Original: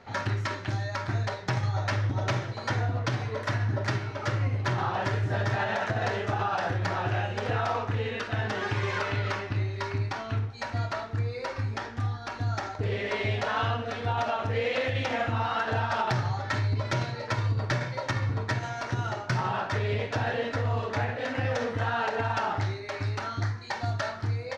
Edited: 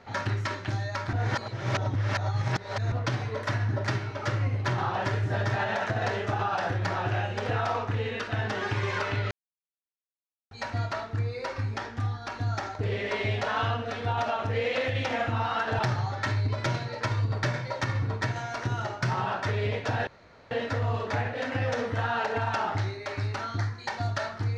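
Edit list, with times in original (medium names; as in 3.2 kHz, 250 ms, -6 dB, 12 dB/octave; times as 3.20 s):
1.13–2.92 s: reverse
9.31–10.51 s: mute
15.79–16.06 s: delete
20.34 s: insert room tone 0.44 s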